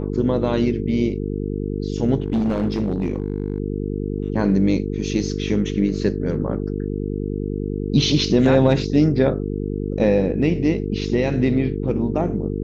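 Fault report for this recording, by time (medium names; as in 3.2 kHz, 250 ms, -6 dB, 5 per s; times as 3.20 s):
buzz 50 Hz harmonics 9 -25 dBFS
2.20–3.60 s: clipped -16 dBFS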